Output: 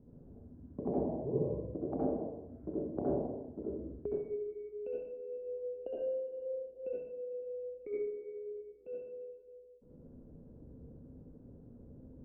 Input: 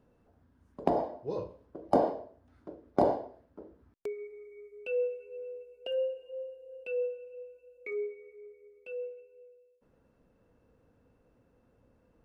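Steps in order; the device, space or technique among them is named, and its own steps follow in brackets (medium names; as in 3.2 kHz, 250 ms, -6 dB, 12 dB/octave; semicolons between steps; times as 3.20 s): television next door (compression 5:1, threshold -40 dBFS, peak gain reduction 18.5 dB; low-pass 340 Hz 12 dB/octave; reverberation RT60 0.75 s, pre-delay 61 ms, DRR -6 dB); trim +8.5 dB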